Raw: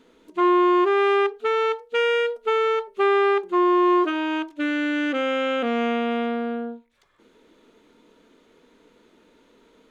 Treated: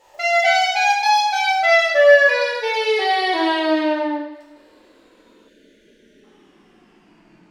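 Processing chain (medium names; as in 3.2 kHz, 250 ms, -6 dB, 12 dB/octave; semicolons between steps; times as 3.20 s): gliding tape speed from 198% -> 66%; two-slope reverb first 0.89 s, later 2.3 s, from -23 dB, DRR -7 dB; time-frequency box 5.48–6.24 s, 650–1400 Hz -23 dB; trim -2.5 dB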